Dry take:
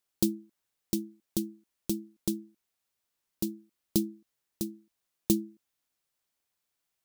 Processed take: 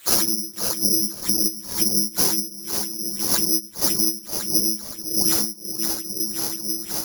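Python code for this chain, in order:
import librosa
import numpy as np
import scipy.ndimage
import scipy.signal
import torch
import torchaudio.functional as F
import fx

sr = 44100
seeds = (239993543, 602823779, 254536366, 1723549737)

p1 = fx.phase_scramble(x, sr, seeds[0], window_ms=200)
p2 = fx.band_shelf(p1, sr, hz=7800.0, db=10.0, octaves=1.7)
p3 = fx.over_compress(p2, sr, threshold_db=-35.0, ratio=-0.5)
p4 = p2 + F.gain(torch.from_numpy(p3), -2.0).numpy()
p5 = fx.echo_diffused(p4, sr, ms=485, feedback_pct=43, wet_db=-16)
p6 = fx.filter_lfo_lowpass(p5, sr, shape='sine', hz=1.9, low_hz=470.0, high_hz=6000.0, q=6.6)
p7 = np.clip(10.0 ** (20.0 / 20.0) * p6, -1.0, 1.0) / 10.0 ** (20.0 / 20.0)
p8 = fx.doubler(p7, sr, ms=19.0, db=-5.5, at=(1.94, 2.4))
p9 = (np.kron(p8[::8], np.eye(8)[0]) * 8)[:len(p8)]
p10 = fx.band_squash(p9, sr, depth_pct=100)
y = F.gain(torch.from_numpy(p10), -1.0).numpy()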